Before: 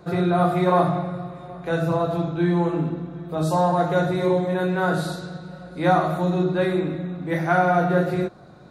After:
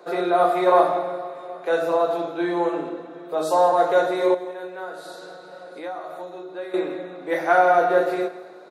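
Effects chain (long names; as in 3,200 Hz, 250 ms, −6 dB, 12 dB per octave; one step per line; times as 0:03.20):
0:04.34–0:06.74: downward compressor 6 to 1, threshold −33 dBFS, peak gain reduction 18 dB
four-pole ladder high-pass 350 Hz, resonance 30%
repeating echo 166 ms, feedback 50%, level −16.5 dB
level +8 dB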